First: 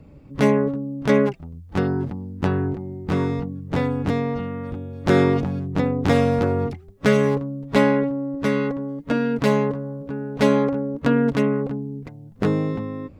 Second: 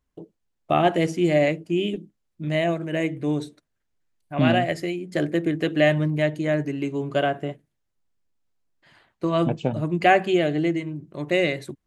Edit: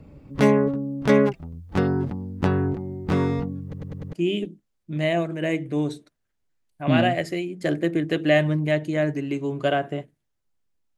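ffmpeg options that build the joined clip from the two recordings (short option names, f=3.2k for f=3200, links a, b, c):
-filter_complex "[0:a]apad=whole_dur=10.97,atrim=end=10.97,asplit=5[a][b][c][d][e];[a]atrim=end=3.732[f];[b]atrim=start=3.628:end=3.732[g];[c]atrim=start=3.628:end=3.732[h];[d]atrim=start=3.628:end=3.732[i];[e]atrim=start=3.628:end=3.732[j];[1:a]atrim=start=1.638:end=8.48[k];[f][g]acrossfade=d=0.004:c1=hsin:c2=hsin[l];[l][h]acrossfade=d=0.004:c1=hsin:c2=hsin[m];[m][i]acrossfade=d=0.004:c1=hsin:c2=hsin[n];[n][j]acrossfade=d=0.004:c1=hsin:c2=hsin[o];[o][k]acrossfade=d=0.004:c1=hsin:c2=hsin"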